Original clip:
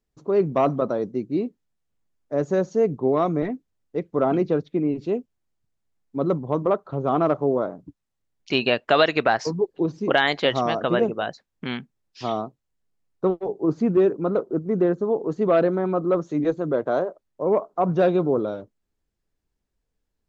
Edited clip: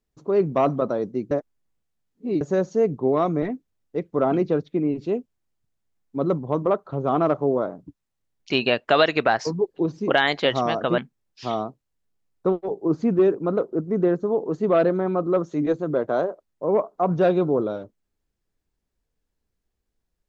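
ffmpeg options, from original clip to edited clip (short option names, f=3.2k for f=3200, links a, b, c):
-filter_complex "[0:a]asplit=4[a][b][c][d];[a]atrim=end=1.312[e];[b]atrim=start=1.308:end=2.412,asetpts=PTS-STARTPTS,areverse[f];[c]atrim=start=2.408:end=10.982[g];[d]atrim=start=11.758[h];[e][f]acrossfade=d=0.004:c1=hsin:c2=hsin[i];[i][g]acrossfade=d=0.004:c1=hsin:c2=hsin[j];[j][h]acrossfade=d=0.004:c1=hsin:c2=hsin"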